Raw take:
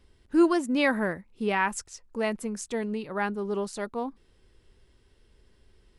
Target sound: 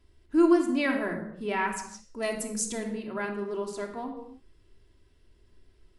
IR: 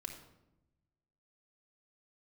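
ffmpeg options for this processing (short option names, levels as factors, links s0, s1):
-filter_complex "[0:a]asettb=1/sr,asplit=3[s0][s1][s2];[s0]atrim=end=2.224[s3];[s1]atrim=start=2.22:end=2.91,asetpts=PTS-STARTPTS,afade=t=in:d=0.004:c=qsin,afade=t=out:st=0.686:d=0.004:c=qsin,bass=f=250:g=4,treble=f=4000:g=13[s4];[s2]atrim=start=2.906[s5];[s3][s4]acrossfade=d=0.004:c1=hsin:c2=qsin[s6];[s6][s5]acrossfade=d=0.004:c1=qsin:c2=hsin[s7];[1:a]atrim=start_sample=2205,afade=t=out:st=0.38:d=0.01,atrim=end_sample=17199[s8];[s7][s8]afir=irnorm=-1:irlink=0"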